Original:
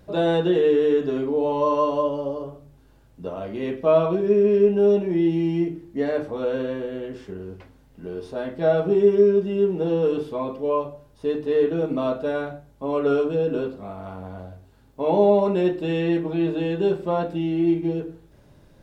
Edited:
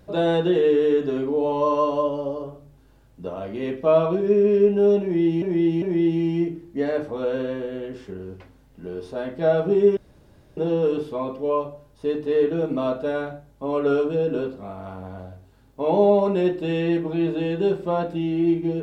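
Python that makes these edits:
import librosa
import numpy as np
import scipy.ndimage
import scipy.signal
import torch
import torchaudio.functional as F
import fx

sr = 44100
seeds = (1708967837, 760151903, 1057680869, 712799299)

y = fx.edit(x, sr, fx.repeat(start_s=5.02, length_s=0.4, count=3),
    fx.room_tone_fill(start_s=9.17, length_s=0.6), tone=tone)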